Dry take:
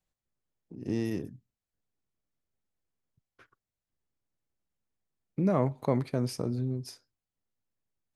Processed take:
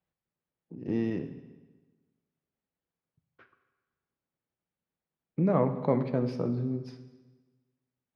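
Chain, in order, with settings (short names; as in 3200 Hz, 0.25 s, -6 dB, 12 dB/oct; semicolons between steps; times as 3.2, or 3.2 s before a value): HPF 150 Hz 6 dB/oct; air absorption 300 m; reverb RT60 1.3 s, pre-delay 3 ms, DRR 7.5 dB; gain +2.5 dB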